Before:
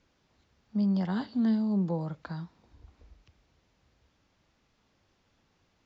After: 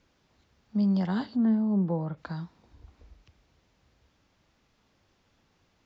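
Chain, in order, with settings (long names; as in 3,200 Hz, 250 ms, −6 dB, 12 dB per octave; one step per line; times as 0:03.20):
0:01.35–0:02.16: low-pass filter 1,400 Hz → 2,500 Hz 12 dB per octave
level +2 dB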